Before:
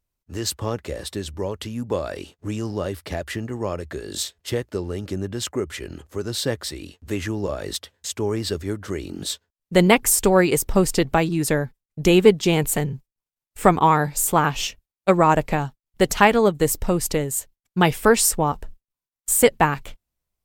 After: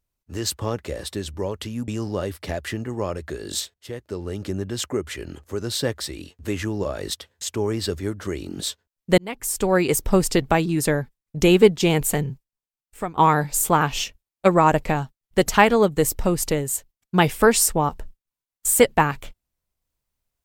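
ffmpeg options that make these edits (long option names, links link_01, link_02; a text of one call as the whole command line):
ffmpeg -i in.wav -filter_complex "[0:a]asplit=5[link_01][link_02][link_03][link_04][link_05];[link_01]atrim=end=1.882[link_06];[link_02]atrim=start=2.508:end=4.37,asetpts=PTS-STARTPTS,afade=type=out:start_time=1.858:duration=0.004:curve=hsin:silence=0.112202[link_07];[link_03]atrim=start=4.37:end=9.81,asetpts=PTS-STARTPTS,afade=type=in:duration=0.67:silence=0.112202,afade=type=out:start_time=5.436:duration=0.004:curve=hsin[link_08];[link_04]atrim=start=9.81:end=13.79,asetpts=PTS-STARTPTS,afade=type=in:duration=0.79,afade=type=out:start_time=3.1:duration=0.88:silence=0.1[link_09];[link_05]atrim=start=13.79,asetpts=PTS-STARTPTS,afade=type=in:duration=0.004:curve=hsin:silence=0.1[link_10];[link_07][link_08][link_09][link_10]concat=n=4:v=0:a=1[link_11];[link_06][link_11]acrossfade=duration=0.004:curve1=hsin:curve2=hsin" out.wav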